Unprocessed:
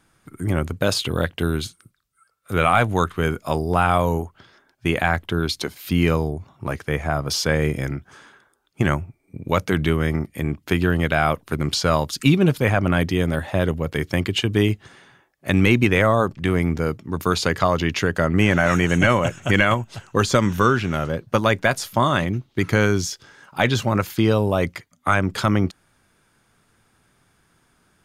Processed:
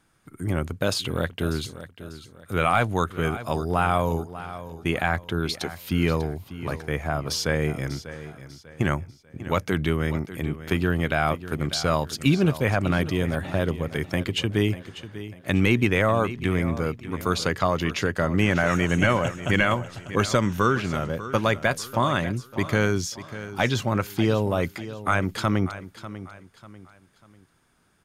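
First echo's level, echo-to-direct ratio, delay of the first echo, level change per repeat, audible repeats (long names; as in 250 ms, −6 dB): −14.0 dB, −13.5 dB, 594 ms, −9.0 dB, 3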